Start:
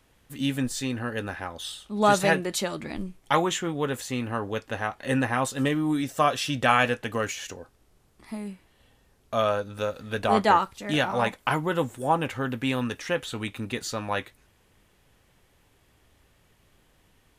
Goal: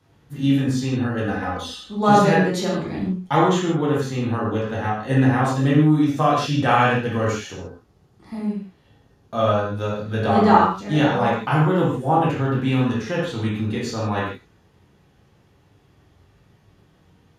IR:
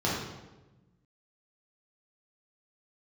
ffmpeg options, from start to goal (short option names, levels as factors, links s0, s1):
-filter_complex "[0:a]asettb=1/sr,asplit=3[s0][s1][s2];[s0]atrim=end=1.224[s3];[s1]atrim=start=1.22:end=1.84,asetpts=PTS-STARTPTS,afade=t=in:d=0.004:c=qsin,afade=t=out:st=0.616:d=0.004:c=qsin,aecho=1:1:4:0.94,atrim=end_sample=27342[s4];[s2]atrim=start=1.836[s5];[s3][s4]acrossfade=d=0.004:c1=hsin:c2=qsin[s6];[s6][s5]acrossfade=d=0.004:c1=qsin:c2=hsin[s7];[1:a]atrim=start_sample=2205,afade=t=out:st=0.22:d=0.01,atrim=end_sample=10143[s8];[s7][s8]afir=irnorm=-1:irlink=0,volume=0.422"